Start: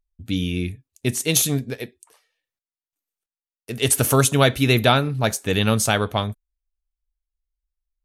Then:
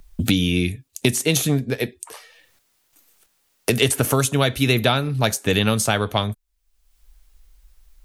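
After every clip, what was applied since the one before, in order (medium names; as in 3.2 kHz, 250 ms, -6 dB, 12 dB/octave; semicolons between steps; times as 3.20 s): three bands compressed up and down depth 100%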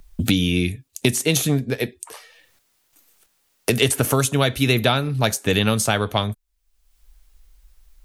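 no audible change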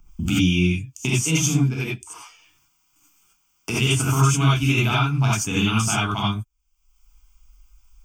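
static phaser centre 2.7 kHz, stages 8; gated-style reverb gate 110 ms rising, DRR -6.5 dB; trim -5 dB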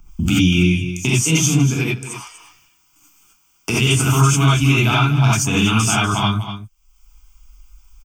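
delay 243 ms -12.5 dB; in parallel at -2.5 dB: peak limiter -17 dBFS, peak gain reduction 11.5 dB; on the sum: trim +1.5 dB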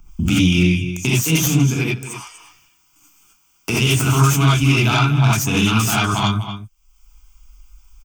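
self-modulated delay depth 0.091 ms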